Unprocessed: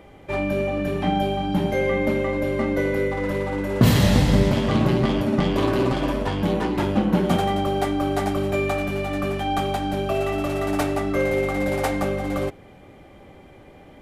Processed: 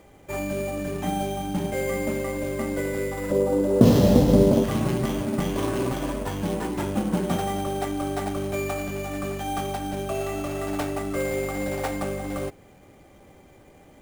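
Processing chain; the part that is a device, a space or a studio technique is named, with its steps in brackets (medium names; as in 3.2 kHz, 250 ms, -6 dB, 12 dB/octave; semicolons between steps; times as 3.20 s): early companding sampler (sample-rate reducer 9.3 kHz, jitter 0%; companded quantiser 6-bit); 3.31–4.64 s: graphic EQ 250/500/2000 Hz +7/+11/-8 dB; trim -5 dB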